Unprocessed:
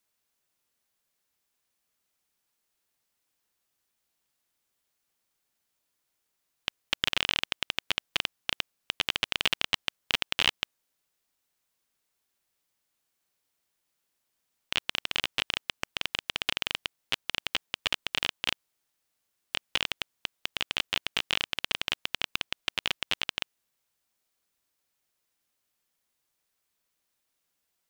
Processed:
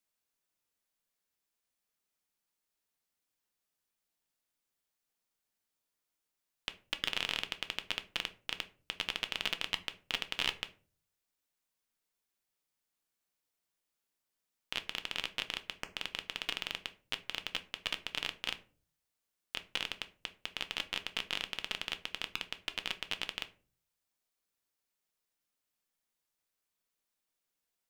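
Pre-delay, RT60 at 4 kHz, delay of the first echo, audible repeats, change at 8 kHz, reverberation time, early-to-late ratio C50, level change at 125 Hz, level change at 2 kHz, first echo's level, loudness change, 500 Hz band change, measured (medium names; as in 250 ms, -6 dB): 3 ms, 0.25 s, no echo, no echo, -7.0 dB, 0.40 s, 16.5 dB, -7.5 dB, -7.0 dB, no echo, -7.0 dB, -6.5 dB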